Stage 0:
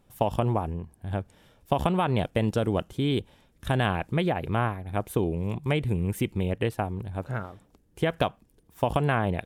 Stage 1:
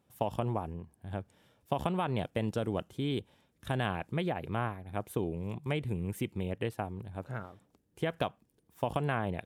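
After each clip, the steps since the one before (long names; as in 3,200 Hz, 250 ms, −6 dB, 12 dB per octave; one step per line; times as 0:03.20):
high-pass filter 82 Hz
level −7 dB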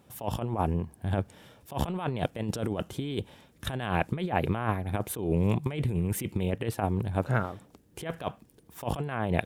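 compressor whose output falls as the input rises −36 dBFS, ratio −0.5
level +8.5 dB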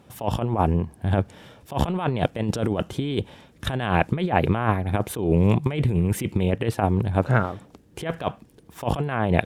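high-shelf EQ 9,500 Hz −11 dB
level +7 dB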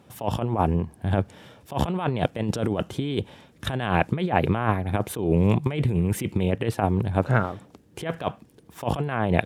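high-pass filter 66 Hz
level −1 dB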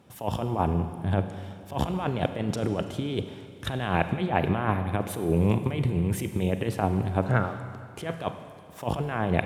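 four-comb reverb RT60 2.2 s, combs from 32 ms, DRR 9 dB
level −3 dB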